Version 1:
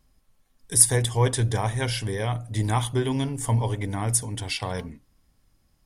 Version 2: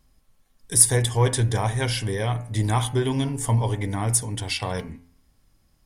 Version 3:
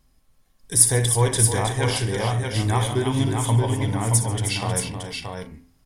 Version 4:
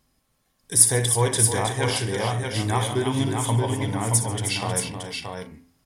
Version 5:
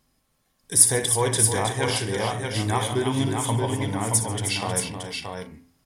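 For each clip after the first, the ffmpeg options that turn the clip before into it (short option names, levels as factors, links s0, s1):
-filter_complex "[0:a]bandreject=f=86.23:t=h:w=4,bandreject=f=172.46:t=h:w=4,bandreject=f=258.69:t=h:w=4,bandreject=f=344.92:t=h:w=4,bandreject=f=431.15:t=h:w=4,bandreject=f=517.38:t=h:w=4,bandreject=f=603.61:t=h:w=4,bandreject=f=689.84:t=h:w=4,bandreject=f=776.07:t=h:w=4,bandreject=f=862.3:t=h:w=4,bandreject=f=948.53:t=h:w=4,bandreject=f=1034.76:t=h:w=4,bandreject=f=1120.99:t=h:w=4,bandreject=f=1207.22:t=h:w=4,bandreject=f=1293.45:t=h:w=4,bandreject=f=1379.68:t=h:w=4,bandreject=f=1465.91:t=h:w=4,bandreject=f=1552.14:t=h:w=4,bandreject=f=1638.37:t=h:w=4,bandreject=f=1724.6:t=h:w=4,bandreject=f=1810.83:t=h:w=4,bandreject=f=1897.06:t=h:w=4,bandreject=f=1983.29:t=h:w=4,bandreject=f=2069.52:t=h:w=4,bandreject=f=2155.75:t=h:w=4,bandreject=f=2241.98:t=h:w=4,bandreject=f=2328.21:t=h:w=4,bandreject=f=2414.44:t=h:w=4,bandreject=f=2500.67:t=h:w=4,bandreject=f=2586.9:t=h:w=4,bandreject=f=2673.13:t=h:w=4,bandreject=f=2759.36:t=h:w=4,bandreject=f=2845.59:t=h:w=4,bandreject=f=2931.82:t=h:w=4,asplit=2[s0][s1];[s1]asoftclip=type=tanh:threshold=0.106,volume=0.316[s2];[s0][s2]amix=inputs=2:normalize=0"
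-af "aecho=1:1:60|140|314|626|665:0.282|0.119|0.376|0.562|0.15"
-af "highpass=f=130:p=1"
-af "bandreject=f=60:t=h:w=6,bandreject=f=120:t=h:w=6"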